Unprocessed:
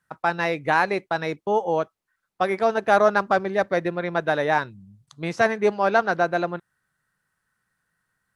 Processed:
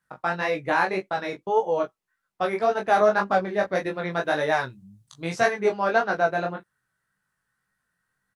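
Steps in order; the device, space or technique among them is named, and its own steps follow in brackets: 3.75–5.51 s: treble shelf 4.6 kHz +8.5 dB; double-tracked vocal (doubling 16 ms -7 dB; chorus 1.8 Hz, delay 19.5 ms, depth 4.6 ms)

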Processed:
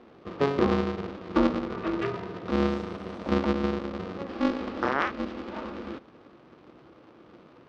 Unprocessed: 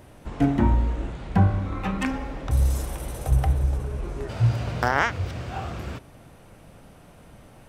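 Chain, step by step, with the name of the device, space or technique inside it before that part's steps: ring modulator pedal into a guitar cabinet (polarity switched at an audio rate 140 Hz; cabinet simulation 80–4600 Hz, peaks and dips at 91 Hz -5 dB, 230 Hz +3 dB, 340 Hz +10 dB, 500 Hz +6 dB, 1.2 kHz +7 dB); trim -7.5 dB

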